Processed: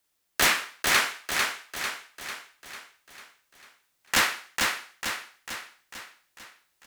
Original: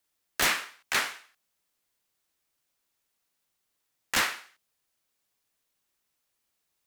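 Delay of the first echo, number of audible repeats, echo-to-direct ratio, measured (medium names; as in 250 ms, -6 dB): 447 ms, 6, -2.0 dB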